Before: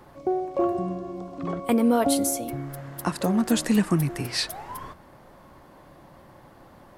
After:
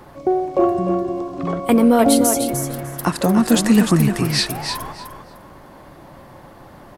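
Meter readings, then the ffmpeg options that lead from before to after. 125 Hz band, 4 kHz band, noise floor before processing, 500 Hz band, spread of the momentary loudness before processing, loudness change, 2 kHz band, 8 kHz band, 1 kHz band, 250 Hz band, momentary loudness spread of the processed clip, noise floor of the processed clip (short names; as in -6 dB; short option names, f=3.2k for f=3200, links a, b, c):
+8.0 dB, +8.0 dB, -51 dBFS, +8.0 dB, 15 LU, +8.0 dB, +8.0 dB, +8.0 dB, +8.0 dB, +8.0 dB, 12 LU, -43 dBFS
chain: -af "acontrast=47,aecho=1:1:301|602|903:0.447|0.0849|0.0161,volume=1.5dB"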